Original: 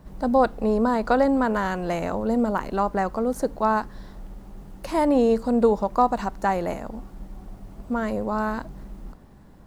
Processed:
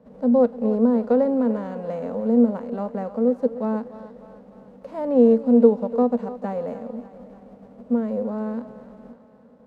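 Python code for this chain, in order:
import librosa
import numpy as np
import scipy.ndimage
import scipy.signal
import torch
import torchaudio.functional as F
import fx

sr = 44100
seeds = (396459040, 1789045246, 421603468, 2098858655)

p1 = fx.envelope_flatten(x, sr, power=0.6)
p2 = fx.double_bandpass(p1, sr, hz=340.0, octaves=1.0)
p3 = p2 + fx.echo_thinned(p2, sr, ms=296, feedback_pct=56, hz=370.0, wet_db=-13.0, dry=0)
y = p3 * 10.0 ** (7.0 / 20.0)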